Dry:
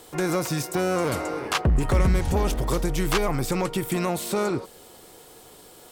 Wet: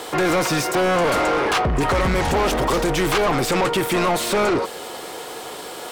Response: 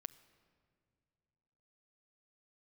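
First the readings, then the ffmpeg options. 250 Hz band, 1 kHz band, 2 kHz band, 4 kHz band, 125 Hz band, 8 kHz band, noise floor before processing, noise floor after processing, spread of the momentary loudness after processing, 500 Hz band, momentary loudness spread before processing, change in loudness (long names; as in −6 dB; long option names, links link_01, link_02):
+4.0 dB, +9.5 dB, +9.0 dB, +8.0 dB, −0.5 dB, +5.0 dB, −49 dBFS, −34 dBFS, 14 LU, +7.0 dB, 5 LU, +5.5 dB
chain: -filter_complex "[0:a]asplit=2[link_01][link_02];[link_02]highpass=frequency=720:poles=1,volume=24dB,asoftclip=type=tanh:threshold=-12dB[link_03];[link_01][link_03]amix=inputs=2:normalize=0,lowpass=frequency=2500:poles=1,volume=-6dB,asoftclip=type=tanh:threshold=-17.5dB,volume=3.5dB"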